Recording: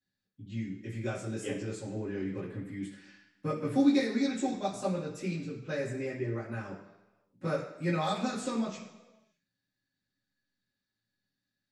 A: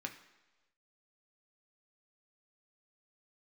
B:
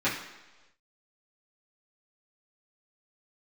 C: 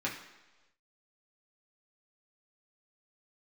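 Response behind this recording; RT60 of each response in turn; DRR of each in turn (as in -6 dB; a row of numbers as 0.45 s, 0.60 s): B; no single decay rate, 1.2 s, no single decay rate; 3.0 dB, -11.5 dB, -5.0 dB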